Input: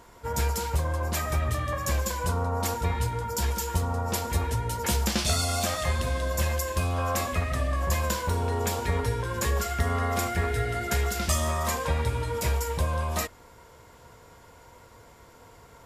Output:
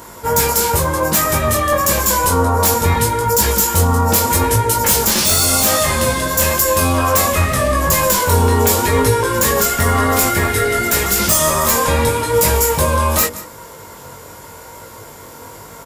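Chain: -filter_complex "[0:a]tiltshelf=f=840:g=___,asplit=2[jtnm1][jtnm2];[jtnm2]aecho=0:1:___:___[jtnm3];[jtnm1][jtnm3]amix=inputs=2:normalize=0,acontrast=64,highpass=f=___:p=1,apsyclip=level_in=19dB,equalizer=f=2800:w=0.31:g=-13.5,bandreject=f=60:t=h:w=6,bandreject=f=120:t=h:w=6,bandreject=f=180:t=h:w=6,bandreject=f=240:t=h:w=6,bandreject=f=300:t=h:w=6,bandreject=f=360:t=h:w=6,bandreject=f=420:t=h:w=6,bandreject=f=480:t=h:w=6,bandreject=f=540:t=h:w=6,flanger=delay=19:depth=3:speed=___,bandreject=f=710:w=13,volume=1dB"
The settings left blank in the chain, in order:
-5.5, 176, 0.1, 140, 0.88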